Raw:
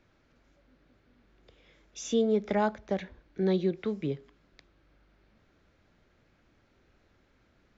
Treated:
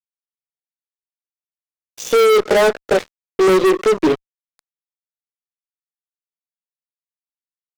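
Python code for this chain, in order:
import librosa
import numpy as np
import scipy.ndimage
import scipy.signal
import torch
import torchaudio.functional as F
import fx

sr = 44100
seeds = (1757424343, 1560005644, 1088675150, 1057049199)

y = fx.filter_sweep_highpass(x, sr, from_hz=450.0, to_hz=110.0, start_s=3.49, end_s=6.27, q=3.5)
y = fx.doubler(y, sr, ms=16.0, db=-3)
y = fx.fuzz(y, sr, gain_db=28.0, gate_db=-37.0)
y = F.gain(torch.from_numpy(y), 3.0).numpy()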